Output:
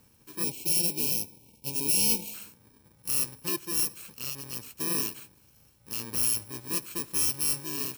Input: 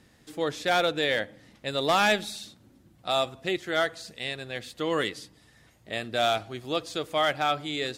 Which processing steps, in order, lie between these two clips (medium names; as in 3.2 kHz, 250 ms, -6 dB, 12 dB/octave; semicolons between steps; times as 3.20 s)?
bit-reversed sample order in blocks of 64 samples; spectral selection erased 0.44–2.34 s, 990–2200 Hz; trim -2 dB